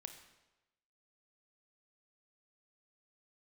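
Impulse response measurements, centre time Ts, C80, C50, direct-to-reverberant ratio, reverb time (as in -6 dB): 18 ms, 10.5 dB, 8.5 dB, 6.5 dB, 1.0 s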